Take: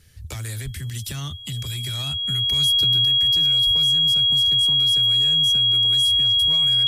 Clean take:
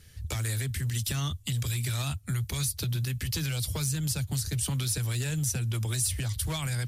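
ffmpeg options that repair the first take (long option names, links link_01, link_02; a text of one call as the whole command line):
ffmpeg -i in.wav -filter_complex "[0:a]bandreject=frequency=3300:width=30,asplit=3[link_01][link_02][link_03];[link_01]afade=type=out:start_time=0.64:duration=0.02[link_04];[link_02]highpass=frequency=140:width=0.5412,highpass=frequency=140:width=1.3066,afade=type=in:start_time=0.64:duration=0.02,afade=type=out:start_time=0.76:duration=0.02[link_05];[link_03]afade=type=in:start_time=0.76:duration=0.02[link_06];[link_04][link_05][link_06]amix=inputs=3:normalize=0,asplit=3[link_07][link_08][link_09];[link_07]afade=type=out:start_time=3.65:duration=0.02[link_10];[link_08]highpass=frequency=140:width=0.5412,highpass=frequency=140:width=1.3066,afade=type=in:start_time=3.65:duration=0.02,afade=type=out:start_time=3.77:duration=0.02[link_11];[link_09]afade=type=in:start_time=3.77:duration=0.02[link_12];[link_10][link_11][link_12]amix=inputs=3:normalize=0,asetnsamples=nb_out_samples=441:pad=0,asendcmd='3.05 volume volume 4.5dB',volume=0dB" out.wav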